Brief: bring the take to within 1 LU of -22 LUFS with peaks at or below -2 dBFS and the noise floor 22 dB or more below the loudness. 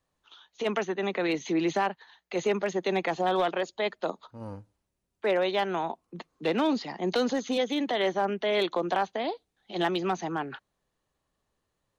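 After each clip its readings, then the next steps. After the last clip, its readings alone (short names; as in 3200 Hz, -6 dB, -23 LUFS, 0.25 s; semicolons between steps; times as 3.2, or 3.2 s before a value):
clipped 0.3%; flat tops at -19.0 dBFS; loudness -29.0 LUFS; peak -19.0 dBFS; loudness target -22.0 LUFS
-> clip repair -19 dBFS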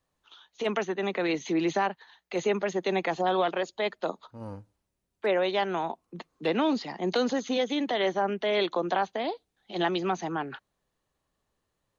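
clipped 0.0%; loudness -29.0 LUFS; peak -15.5 dBFS; loudness target -22.0 LUFS
-> gain +7 dB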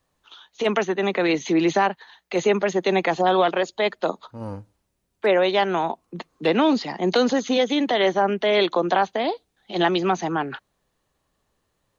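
loudness -22.0 LUFS; peak -8.5 dBFS; noise floor -74 dBFS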